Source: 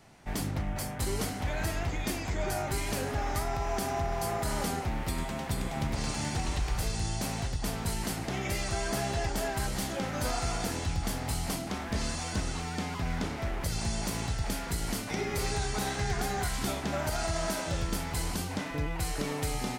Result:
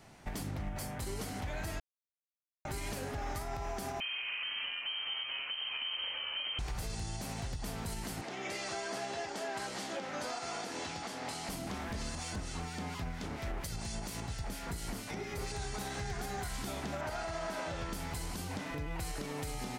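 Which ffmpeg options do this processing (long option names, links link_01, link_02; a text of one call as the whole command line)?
ffmpeg -i in.wav -filter_complex "[0:a]asettb=1/sr,asplit=3[link_01][link_02][link_03];[link_01]atrim=end=4.004[link_04];[link_02]atrim=start=4:end=6.59,asetpts=PTS-STARTPTS,afade=type=in:duration=0.004:curve=qsin,afade=type=out:start_time=2.586:duration=0.004:curve=qsin,lowpass=frequency=2700:width_type=q:width=0.5098,lowpass=frequency=2700:width_type=q:width=0.6013,lowpass=frequency=2700:width_type=q:width=0.9,lowpass=frequency=2700:width_type=q:width=2.563,afreqshift=-3200[link_05];[link_03]atrim=start=6.586[link_06];[link_04][link_05]acrossfade=duration=0.004:curve1=hsin:curve2=qsin[link_07];[link_07][link_06]acrossfade=duration=0.004:curve1=qsin:curve2=hsin,asettb=1/sr,asplit=3[link_08][link_09][link_10];[link_08]atrim=end=8.214[link_11];[link_09]atrim=start=8.21:end=11.49,asetpts=PTS-STARTPTS,afade=type=in:duration=0.004:curve=qsin,afade=type=out:start_time=3.276:duration=0.004:curve=qsin,highpass=290,lowpass=7100[link_12];[link_10]atrim=start=11.486[link_13];[link_11][link_12]acrossfade=duration=0.004:curve1=hsin:curve2=qsin[link_14];[link_14][link_13]acrossfade=duration=0.004:curve1=qsin:curve2=hsin,asettb=1/sr,asplit=3[link_15][link_16][link_17];[link_15]atrim=end=12.154[link_18];[link_16]atrim=start=12.15:end=15.52,asetpts=PTS-STARTPTS,afade=type=in:duration=0.004:curve=qsin,afade=type=out:start_time=3.366:duration=0.004:curve=qsin,acrossover=split=1900[link_19][link_20];[link_19]aeval=exprs='val(0)*(1-0.5/2+0.5/2*cos(2*PI*4.3*n/s))':channel_layout=same[link_21];[link_20]aeval=exprs='val(0)*(1-0.5/2-0.5/2*cos(2*PI*4.3*n/s))':channel_layout=same[link_22];[link_21][link_22]amix=inputs=2:normalize=0[link_23];[link_17]atrim=start=15.516[link_24];[link_18][link_23]acrossfade=duration=0.004:curve1=hsin:curve2=qsin[link_25];[link_25][link_24]acrossfade=duration=0.004:curve1=qsin:curve2=hsin,asettb=1/sr,asplit=3[link_26][link_27][link_28];[link_26]atrim=end=17.014[link_29];[link_27]atrim=start=17.01:end=17.93,asetpts=PTS-STARTPTS,afade=type=in:duration=0.004:curve=qsin,afade=type=out:start_time=0.916:duration=0.004:curve=qsin,asplit=2[link_30][link_31];[link_31]highpass=frequency=720:poles=1,volume=10dB,asoftclip=type=tanh:threshold=-19.5dB[link_32];[link_30][link_32]amix=inputs=2:normalize=0,lowpass=frequency=1700:poles=1,volume=-6dB[link_33];[link_28]atrim=start=17.926[link_34];[link_29][link_33]acrossfade=duration=0.004:curve1=hsin:curve2=qsin[link_35];[link_35][link_34]acrossfade=duration=0.004:curve1=qsin:curve2=hsin,asplit=3[link_36][link_37][link_38];[link_36]atrim=end=1.8,asetpts=PTS-STARTPTS,afade=type=out:start_time=1.796:duration=0.004:curve=hsin[link_39];[link_37]atrim=start=1.8:end=2.65,asetpts=PTS-STARTPTS,volume=0[link_40];[link_38]atrim=start=2.65,asetpts=PTS-STARTPTS,afade=type=in:duration=0.004:curve=hsin[link_41];[link_39][link_40][link_41]concat=n=3:v=0:a=1,alimiter=level_in=5.5dB:limit=-24dB:level=0:latency=1:release=214,volume=-5.5dB" out.wav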